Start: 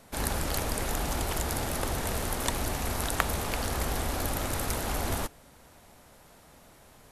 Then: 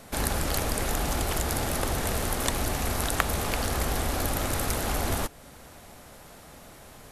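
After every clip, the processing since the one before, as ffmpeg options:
-filter_complex "[0:a]bandreject=f=940:w=22,asplit=2[s0][s1];[s1]acompressor=threshold=0.0126:ratio=6,volume=1.26[s2];[s0][s2]amix=inputs=2:normalize=0"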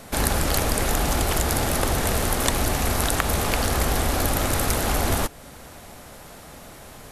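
-af "alimiter=level_in=2.11:limit=0.891:release=50:level=0:latency=1,volume=0.891"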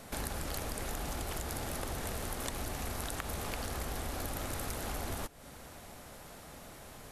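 -af "acompressor=threshold=0.0282:ratio=2.5,volume=0.422"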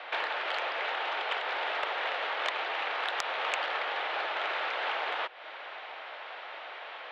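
-af "highpass=f=400:t=q:w=0.5412,highpass=f=400:t=q:w=1.307,lowpass=f=3300:t=q:w=0.5176,lowpass=f=3300:t=q:w=0.7071,lowpass=f=3300:t=q:w=1.932,afreqshift=59,aeval=exprs='0.0891*sin(PI/2*2.24*val(0)/0.0891)':c=same,tiltshelf=f=810:g=-6.5,volume=0.841"

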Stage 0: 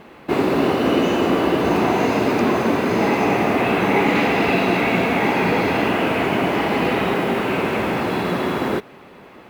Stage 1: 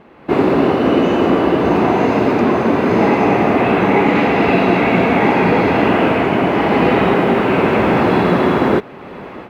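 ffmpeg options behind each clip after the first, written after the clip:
-af "lowpass=f=1900:p=1,dynaudnorm=f=160:g=3:m=5.01,volume=0.891"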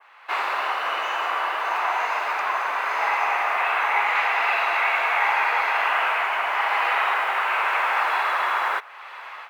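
-af "adynamicequalizer=threshold=0.0141:dfrequency=4100:dqfactor=0.83:tfrequency=4100:tqfactor=0.83:attack=5:release=100:ratio=0.375:range=3:mode=cutabove:tftype=bell,highpass=f=980:w=0.5412,highpass=f=980:w=1.3066,volume=1.12"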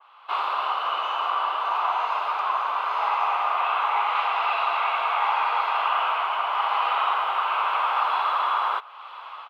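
-af "firequalizer=gain_entry='entry(300,0);entry(1200,10);entry(1800,-9);entry(3100,9);entry(6300,-7);entry(13000,-5)':delay=0.05:min_phase=1,volume=0.447"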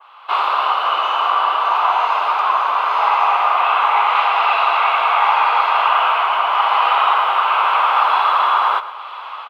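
-af "aecho=1:1:119|238|357|476|595:0.178|0.0889|0.0445|0.0222|0.0111,volume=2.66"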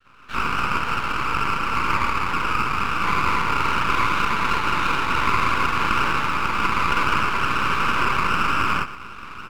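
-filter_complex "[0:a]acrossover=split=1500[s0][s1];[s0]adelay=50[s2];[s2][s1]amix=inputs=2:normalize=0,highpass=f=590:t=q:w=0.5412,highpass=f=590:t=q:w=1.307,lowpass=f=2300:t=q:w=0.5176,lowpass=f=2300:t=q:w=0.7071,lowpass=f=2300:t=q:w=1.932,afreqshift=190,aeval=exprs='max(val(0),0)':c=same"

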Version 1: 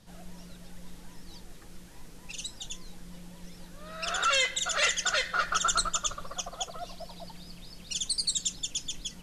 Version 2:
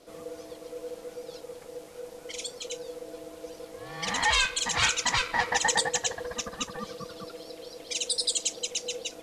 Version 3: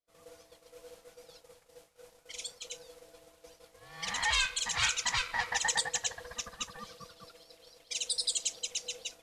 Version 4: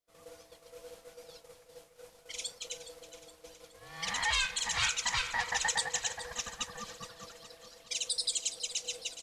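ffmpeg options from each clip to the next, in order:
-af "aeval=exprs='val(0)*sin(2*PI*490*n/s)':c=same,volume=1.68"
-af "agate=range=0.0224:threshold=0.0141:ratio=3:detection=peak,equalizer=f=330:t=o:w=1.9:g=-12.5,volume=0.631"
-filter_complex "[0:a]asplit=2[s0][s1];[s1]alimiter=level_in=1.19:limit=0.0631:level=0:latency=1:release=319,volume=0.841,volume=1[s2];[s0][s2]amix=inputs=2:normalize=0,aecho=1:1:418|836|1254|1672|2090:0.224|0.114|0.0582|0.0297|0.0151,volume=0.631"

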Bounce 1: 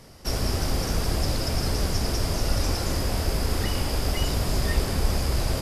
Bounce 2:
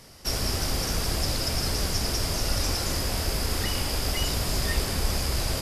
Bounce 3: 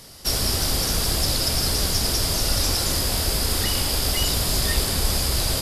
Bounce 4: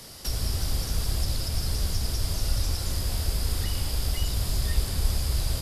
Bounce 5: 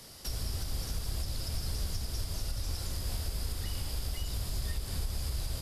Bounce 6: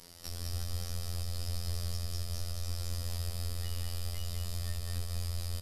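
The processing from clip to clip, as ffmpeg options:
-af "tiltshelf=f=1400:g=-3.5"
-af "aexciter=amount=1.8:drive=6.1:freq=3300,highshelf=f=10000:g=-7,volume=1.41"
-filter_complex "[0:a]acrossover=split=130[s0][s1];[s1]acompressor=threshold=0.0178:ratio=4[s2];[s0][s2]amix=inputs=2:normalize=0"
-af "alimiter=limit=0.119:level=0:latency=1:release=152,volume=0.501"
-af "afftfilt=real='hypot(re,im)*cos(PI*b)':imag='0':win_size=2048:overlap=0.75,aecho=1:1:199:0.631"

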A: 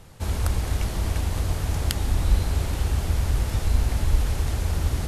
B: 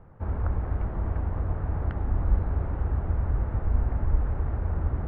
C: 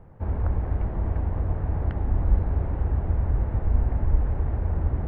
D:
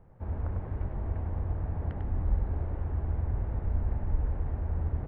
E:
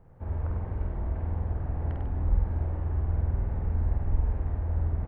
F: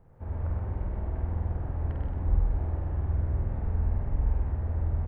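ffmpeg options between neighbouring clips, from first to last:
-af "lowpass=f=1500:w=0.5412,lowpass=f=1500:w=1.3066,volume=0.708"
-af "equalizer=f=1300:t=o:w=0.61:g=-6,volume=1.33"
-af "aecho=1:1:98:0.562,volume=0.398"
-filter_complex "[0:a]asplit=2[s0][s1];[s1]adelay=49,volume=0.668[s2];[s0][s2]amix=inputs=2:normalize=0"
-af "aecho=1:1:126:0.668,volume=0.794"

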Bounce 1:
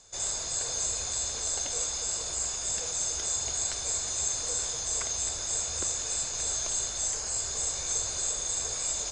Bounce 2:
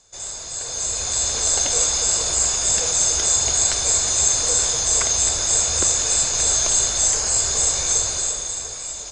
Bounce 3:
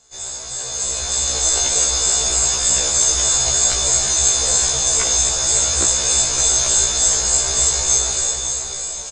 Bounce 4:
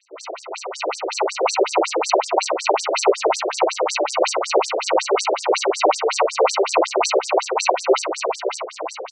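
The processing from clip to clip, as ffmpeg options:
-af "dynaudnorm=f=120:g=17:m=4.22"
-filter_complex "[0:a]asplit=2[s0][s1];[s1]aecho=0:1:555:0.355[s2];[s0][s2]amix=inputs=2:normalize=0,afftfilt=real='re*1.73*eq(mod(b,3),0)':imag='im*1.73*eq(mod(b,3),0)':win_size=2048:overlap=0.75,volume=1.68"
-af "acrusher=samples=26:mix=1:aa=0.000001,afftfilt=real='re*between(b*sr/1024,430*pow(6700/430,0.5+0.5*sin(2*PI*5.4*pts/sr))/1.41,430*pow(6700/430,0.5+0.5*sin(2*PI*5.4*pts/sr))*1.41)':imag='im*between(b*sr/1024,430*pow(6700/430,0.5+0.5*sin(2*PI*5.4*pts/sr))/1.41,430*pow(6700/430,0.5+0.5*sin(2*PI*5.4*pts/sr))*1.41)':win_size=1024:overlap=0.75,volume=2.24"

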